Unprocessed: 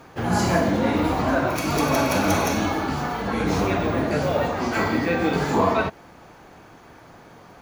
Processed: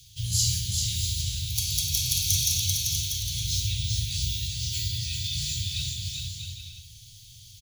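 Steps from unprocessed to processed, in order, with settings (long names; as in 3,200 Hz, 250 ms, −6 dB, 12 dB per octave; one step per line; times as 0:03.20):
high-shelf EQ 2,000 Hz +8.5 dB
bouncing-ball delay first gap 390 ms, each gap 0.65×, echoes 5
speech leveller within 3 dB 2 s
Chebyshev band-stop filter 120–3,300 Hz, order 4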